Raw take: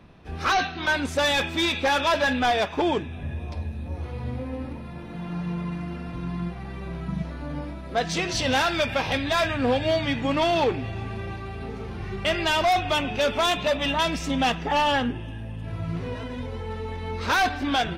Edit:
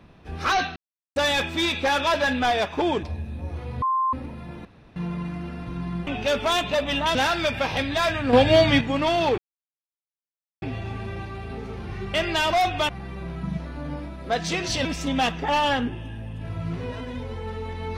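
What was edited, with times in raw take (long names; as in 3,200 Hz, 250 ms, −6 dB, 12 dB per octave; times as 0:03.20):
0:00.76–0:01.16: silence
0:03.03–0:03.50: remove
0:04.29–0:04.60: beep over 1,050 Hz −19.5 dBFS
0:05.12–0:05.43: fill with room tone
0:06.54–0:08.50: swap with 0:13.00–0:14.08
0:09.68–0:10.16: clip gain +7 dB
0:10.73: splice in silence 1.24 s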